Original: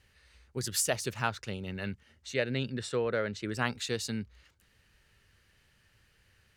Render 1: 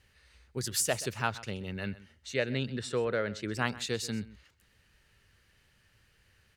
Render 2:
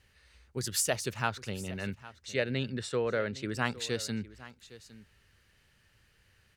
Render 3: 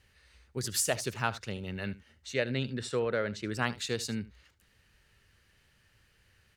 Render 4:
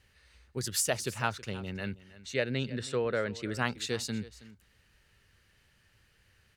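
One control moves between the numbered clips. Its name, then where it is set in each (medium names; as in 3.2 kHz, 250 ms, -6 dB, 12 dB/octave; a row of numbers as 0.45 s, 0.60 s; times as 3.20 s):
delay, time: 129 ms, 810 ms, 76 ms, 322 ms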